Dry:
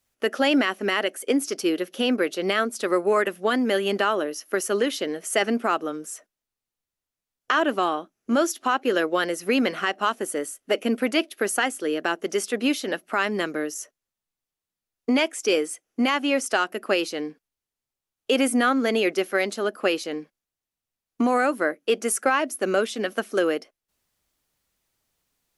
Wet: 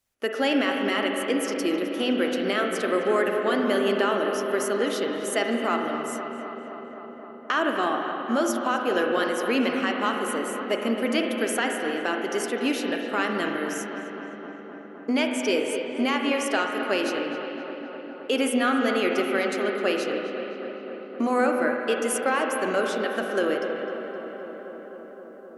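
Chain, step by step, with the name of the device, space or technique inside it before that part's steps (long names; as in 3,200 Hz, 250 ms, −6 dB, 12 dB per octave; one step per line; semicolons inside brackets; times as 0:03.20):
dub delay into a spring reverb (feedback echo with a low-pass in the loop 259 ms, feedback 83%, low-pass 2,800 Hz, level −11 dB; spring reverb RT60 3.1 s, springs 38/44/56 ms, chirp 40 ms, DRR 2.5 dB)
level −3.5 dB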